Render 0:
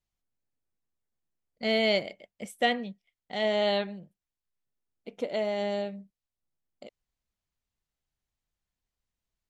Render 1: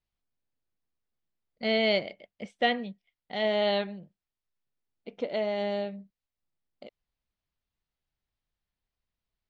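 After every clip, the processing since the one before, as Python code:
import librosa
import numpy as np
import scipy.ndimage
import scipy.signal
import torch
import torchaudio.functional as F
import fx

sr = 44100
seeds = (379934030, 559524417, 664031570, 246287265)

y = scipy.signal.sosfilt(scipy.signal.butter(4, 5000.0, 'lowpass', fs=sr, output='sos'), x)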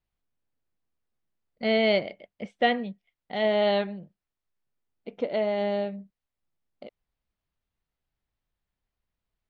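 y = fx.high_shelf(x, sr, hz=4200.0, db=-11.0)
y = F.gain(torch.from_numpy(y), 3.5).numpy()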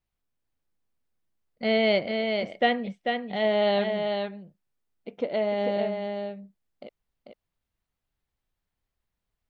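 y = x + 10.0 ** (-5.0 / 20.0) * np.pad(x, (int(443 * sr / 1000.0), 0))[:len(x)]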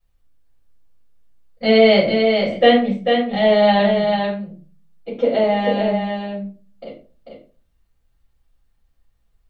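y = fx.room_shoebox(x, sr, seeds[0], volume_m3=190.0, walls='furnished', distance_m=6.0)
y = F.gain(torch.from_numpy(y), -1.0).numpy()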